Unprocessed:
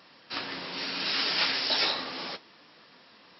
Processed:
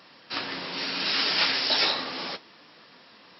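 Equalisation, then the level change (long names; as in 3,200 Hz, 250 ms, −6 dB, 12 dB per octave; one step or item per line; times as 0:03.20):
high-pass filter 59 Hz
+3.0 dB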